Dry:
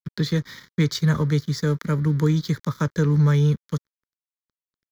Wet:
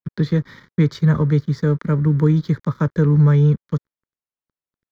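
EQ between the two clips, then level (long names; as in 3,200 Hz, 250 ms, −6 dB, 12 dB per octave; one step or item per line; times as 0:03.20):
high-shelf EQ 2,300 Hz −11.5 dB
high-shelf EQ 5,500 Hz −10.5 dB
+4.5 dB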